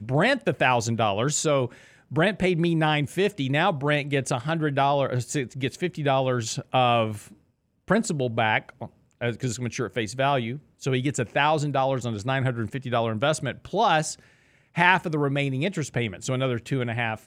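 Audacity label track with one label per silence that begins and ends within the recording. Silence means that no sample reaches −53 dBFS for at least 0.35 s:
7.410000	7.880000	silence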